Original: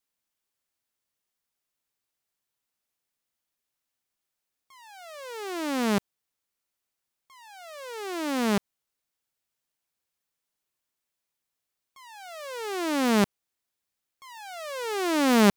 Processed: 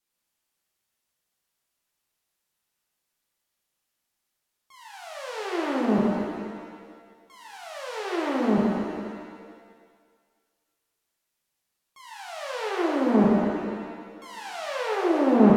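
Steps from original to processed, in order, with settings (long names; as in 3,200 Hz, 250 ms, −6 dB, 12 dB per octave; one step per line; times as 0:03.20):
treble cut that deepens with the level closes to 700 Hz, closed at −24.5 dBFS
reverb with rising layers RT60 1.7 s, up +7 semitones, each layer −8 dB, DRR −3.5 dB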